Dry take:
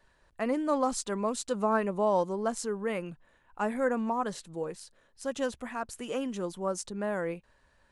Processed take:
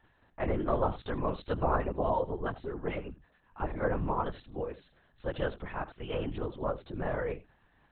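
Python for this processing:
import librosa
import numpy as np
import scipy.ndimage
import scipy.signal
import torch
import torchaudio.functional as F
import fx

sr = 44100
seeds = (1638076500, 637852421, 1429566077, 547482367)

y = fx.filter_lfo_notch(x, sr, shape='sine', hz=9.2, low_hz=270.0, high_hz=2900.0, q=0.72, at=(1.76, 3.88))
y = y + 10.0 ** (-16.5 / 20.0) * np.pad(y, (int(80 * sr / 1000.0), 0))[:len(y)]
y = fx.lpc_vocoder(y, sr, seeds[0], excitation='whisper', order=10)
y = F.gain(torch.from_numpy(y), -1.0).numpy()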